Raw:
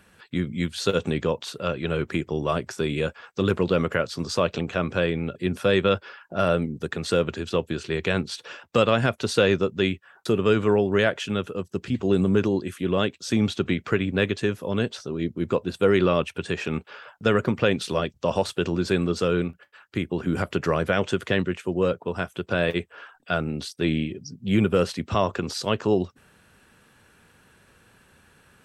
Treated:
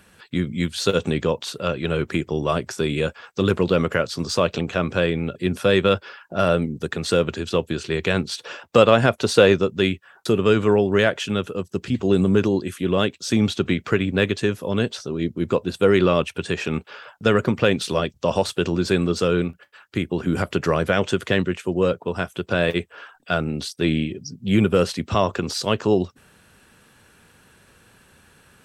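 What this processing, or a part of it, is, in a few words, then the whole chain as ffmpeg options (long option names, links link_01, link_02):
exciter from parts: -filter_complex "[0:a]asettb=1/sr,asplit=3[link_01][link_02][link_03];[link_01]atrim=end=8.434[link_04];[link_02]atrim=start=8.43:end=9.53,asetpts=PTS-STARTPTS,afade=type=in:duration=0.004:curve=qsin,afade=type=out:start_time=1.096:duration=0.004:curve=qsin,equalizer=frequency=650:width=0.61:gain=4[link_05];[link_03]atrim=start=9.526[link_06];[link_04][link_05]acrossfade=duration=0.004:curve1=hsin:curve2=qsin[link_07];[link_07][link_06]acrossfade=duration=0.004:curve1=qsin:curve2=hsin,asplit=2[link_08][link_09];[link_09]highpass=2500,asoftclip=type=tanh:threshold=-30dB,volume=-9dB[link_10];[link_08][link_10]amix=inputs=2:normalize=0,volume=3dB"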